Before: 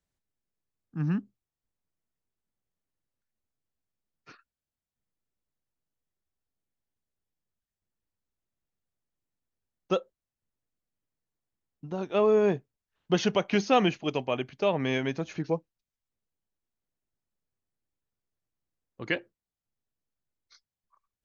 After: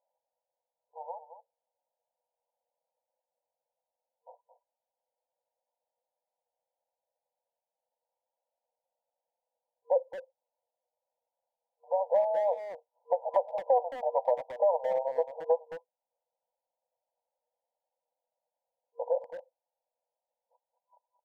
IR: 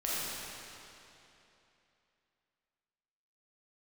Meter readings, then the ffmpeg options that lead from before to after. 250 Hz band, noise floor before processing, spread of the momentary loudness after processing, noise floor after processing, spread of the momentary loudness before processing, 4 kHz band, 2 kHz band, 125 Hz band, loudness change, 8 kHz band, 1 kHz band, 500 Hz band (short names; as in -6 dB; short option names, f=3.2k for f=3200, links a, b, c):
under -30 dB, under -85 dBFS, 19 LU, under -85 dBFS, 11 LU, under -25 dB, -18.0 dB, under -35 dB, -2.0 dB, n/a, +1.0 dB, -0.5 dB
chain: -filter_complex "[0:a]asplit=2[a][b];[b]alimiter=limit=-19dB:level=0:latency=1:release=162,volume=2dB[c];[a][c]amix=inputs=2:normalize=0,afftfilt=real='re*between(b*sr/4096,470,1000)':imag='im*between(b*sr/4096,470,1000)':win_size=4096:overlap=0.75,acompressor=threshold=-32dB:ratio=3,asplit=2[d][e];[e]adelay=220,highpass=300,lowpass=3.4k,asoftclip=type=hard:threshold=-32.5dB,volume=-11dB[f];[d][f]amix=inputs=2:normalize=0,volume=6.5dB"